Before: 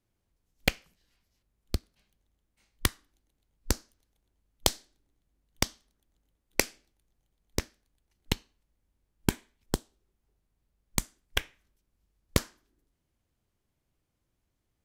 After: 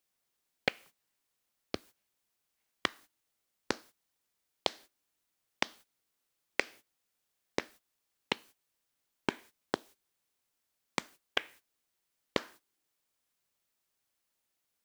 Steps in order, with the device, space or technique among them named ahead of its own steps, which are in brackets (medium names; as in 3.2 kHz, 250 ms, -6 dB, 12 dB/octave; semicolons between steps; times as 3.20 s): baby monitor (band-pass 340–3200 Hz; compression 8:1, threshold -29 dBFS, peak gain reduction 10 dB; white noise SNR 21 dB; gate -57 dBFS, range -18 dB); trim +3.5 dB